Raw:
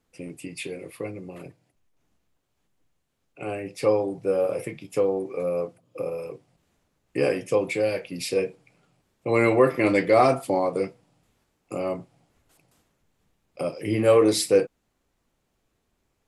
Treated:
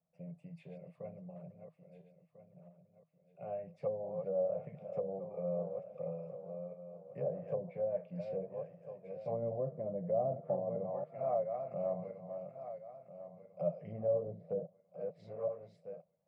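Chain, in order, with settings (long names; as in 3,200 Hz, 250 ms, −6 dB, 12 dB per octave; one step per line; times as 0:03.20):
feedback delay that plays each chunk backwards 673 ms, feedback 50%, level −8 dB
treble cut that deepens with the level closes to 420 Hz, closed at −17 dBFS
pair of resonant band-passes 320 Hz, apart 1.9 octaves
level −1.5 dB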